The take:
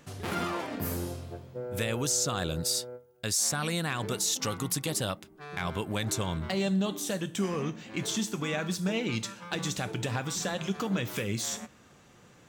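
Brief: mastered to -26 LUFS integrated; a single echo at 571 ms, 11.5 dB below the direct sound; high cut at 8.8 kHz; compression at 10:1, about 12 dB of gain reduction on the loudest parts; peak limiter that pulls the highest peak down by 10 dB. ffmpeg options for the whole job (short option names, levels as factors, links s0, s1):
-af "lowpass=8800,acompressor=threshold=0.0141:ratio=10,alimiter=level_in=2.82:limit=0.0631:level=0:latency=1,volume=0.355,aecho=1:1:571:0.266,volume=6.68"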